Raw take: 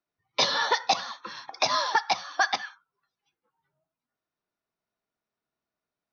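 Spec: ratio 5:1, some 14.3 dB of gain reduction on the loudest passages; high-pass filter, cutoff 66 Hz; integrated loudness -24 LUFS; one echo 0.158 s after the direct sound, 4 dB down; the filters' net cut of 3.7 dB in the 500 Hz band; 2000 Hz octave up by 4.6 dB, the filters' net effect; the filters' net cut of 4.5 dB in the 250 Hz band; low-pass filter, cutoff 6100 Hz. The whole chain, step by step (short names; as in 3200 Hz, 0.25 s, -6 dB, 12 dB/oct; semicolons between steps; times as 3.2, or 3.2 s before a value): HPF 66 Hz; LPF 6100 Hz; bell 250 Hz -4.5 dB; bell 500 Hz -4.5 dB; bell 2000 Hz +6 dB; compressor 5:1, threshold -34 dBFS; echo 0.158 s -4 dB; gain +11.5 dB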